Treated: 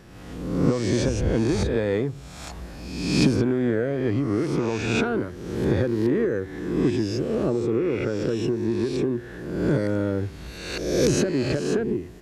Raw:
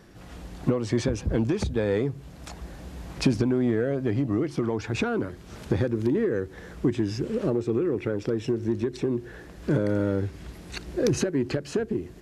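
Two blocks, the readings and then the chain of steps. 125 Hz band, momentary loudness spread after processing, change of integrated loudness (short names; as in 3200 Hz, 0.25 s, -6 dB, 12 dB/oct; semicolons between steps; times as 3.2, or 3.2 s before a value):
+2.5 dB, 10 LU, +2.5 dB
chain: spectral swells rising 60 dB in 1.03 s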